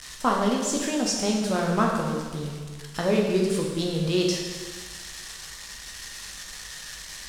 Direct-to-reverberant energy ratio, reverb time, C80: −1.0 dB, 1.5 s, 4.0 dB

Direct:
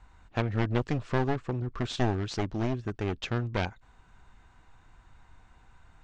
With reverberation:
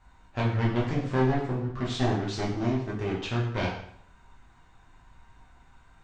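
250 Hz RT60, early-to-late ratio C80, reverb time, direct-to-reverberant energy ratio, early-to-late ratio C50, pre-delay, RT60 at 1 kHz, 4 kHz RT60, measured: 0.65 s, 7.0 dB, 0.65 s, −5.0 dB, 4.5 dB, 4 ms, 0.65 s, 0.60 s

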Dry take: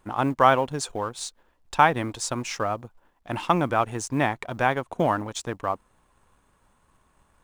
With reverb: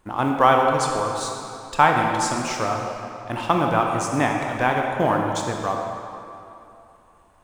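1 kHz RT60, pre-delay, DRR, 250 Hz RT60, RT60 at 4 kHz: 2.9 s, 16 ms, 1.0 dB, 2.7 s, 2.0 s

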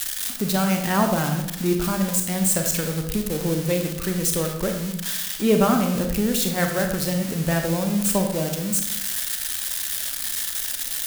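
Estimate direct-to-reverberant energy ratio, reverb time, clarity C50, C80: 3.5 dB, 0.85 s, 6.0 dB, 8.5 dB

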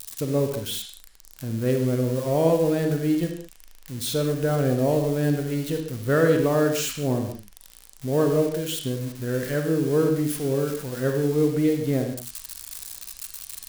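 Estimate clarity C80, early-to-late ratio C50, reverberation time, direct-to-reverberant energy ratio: 8.5 dB, 5.5 dB, non-exponential decay, 4.0 dB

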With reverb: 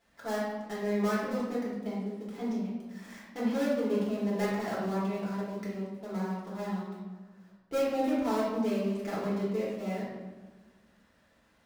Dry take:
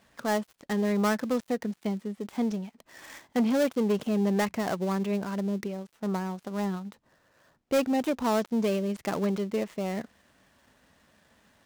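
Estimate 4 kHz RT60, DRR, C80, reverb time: 0.75 s, −8.5 dB, 3.0 dB, 1.3 s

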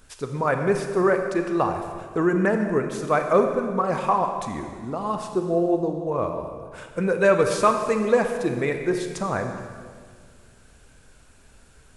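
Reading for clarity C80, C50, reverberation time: 7.0 dB, 6.0 dB, 1.8 s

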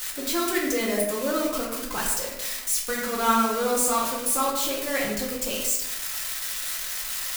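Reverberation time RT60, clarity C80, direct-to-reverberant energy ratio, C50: 1.0 s, 5.5 dB, −4.5 dB, 3.0 dB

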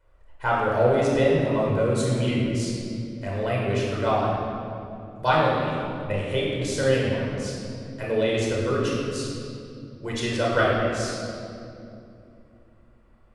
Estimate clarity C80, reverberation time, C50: 0.5 dB, 2.7 s, −1.0 dB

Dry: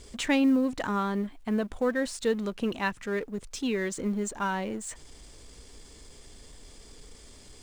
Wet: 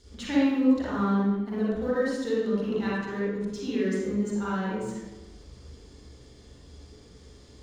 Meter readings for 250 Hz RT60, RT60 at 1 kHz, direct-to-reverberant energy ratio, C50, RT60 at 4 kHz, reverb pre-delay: 1.5 s, 1.0 s, −9.5 dB, −5.0 dB, 0.80 s, 32 ms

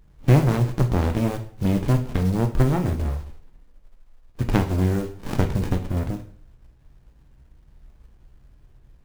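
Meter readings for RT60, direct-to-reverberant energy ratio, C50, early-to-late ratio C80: 0.50 s, 5.5 dB, 12.0 dB, 15.0 dB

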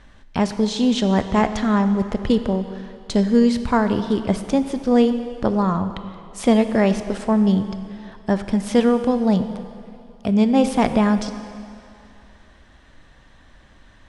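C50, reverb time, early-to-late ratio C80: 10.0 dB, 2.5 s, 11.0 dB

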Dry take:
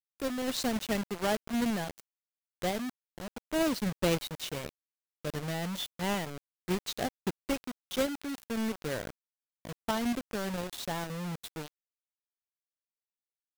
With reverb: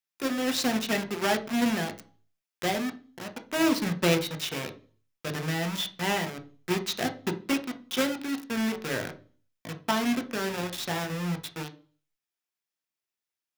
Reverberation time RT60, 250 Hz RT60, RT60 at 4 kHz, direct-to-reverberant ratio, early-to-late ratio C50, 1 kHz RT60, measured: 0.40 s, 0.50 s, 0.45 s, 6.0 dB, 15.0 dB, 0.40 s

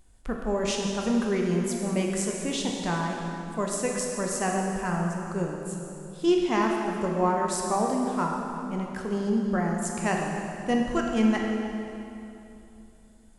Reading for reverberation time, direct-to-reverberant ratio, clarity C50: 2.9 s, 0.0 dB, 1.0 dB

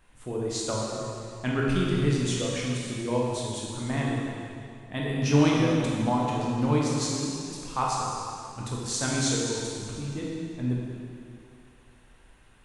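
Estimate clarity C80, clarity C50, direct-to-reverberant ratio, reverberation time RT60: 0.0 dB, −1.5 dB, −4.0 dB, 2.5 s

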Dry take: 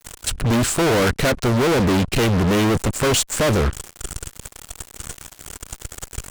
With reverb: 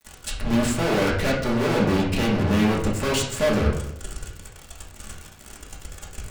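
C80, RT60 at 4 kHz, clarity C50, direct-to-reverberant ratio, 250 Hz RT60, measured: 8.0 dB, 0.50 s, 5.0 dB, −4.5 dB, 1.0 s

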